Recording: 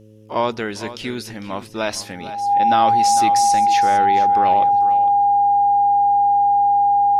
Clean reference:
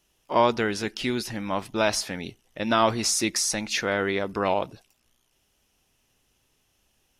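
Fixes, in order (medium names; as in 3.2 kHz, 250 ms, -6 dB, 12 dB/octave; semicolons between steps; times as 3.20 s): de-hum 107.7 Hz, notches 5; band-stop 810 Hz, Q 30; inverse comb 453 ms -14 dB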